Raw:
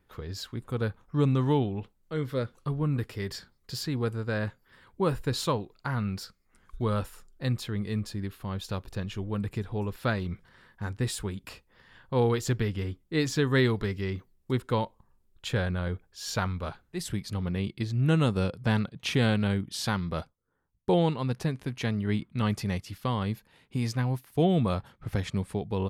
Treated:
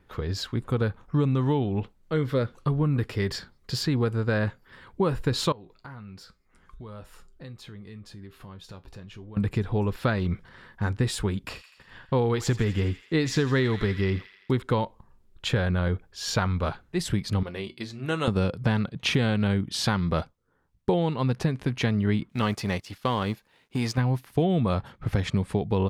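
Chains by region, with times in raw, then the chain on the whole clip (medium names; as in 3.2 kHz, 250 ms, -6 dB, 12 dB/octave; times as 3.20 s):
5.52–9.37 s: compression 3:1, threshold -46 dBFS + feedback comb 56 Hz, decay 0.19 s, harmonics odd
11.47–14.63 s: gate -58 dBFS, range -31 dB + feedback echo behind a high-pass 83 ms, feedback 62%, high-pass 1.6 kHz, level -11.5 dB
17.43–18.28 s: tone controls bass -13 dB, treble +4 dB + hum notches 60/120/180/240/300 Hz + feedback comb 76 Hz, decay 0.18 s, harmonics odd
22.29–23.98 s: companding laws mixed up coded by A + tone controls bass -7 dB, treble +2 dB
whole clip: treble shelf 7.8 kHz -11 dB; compression, threshold -28 dBFS; trim +8 dB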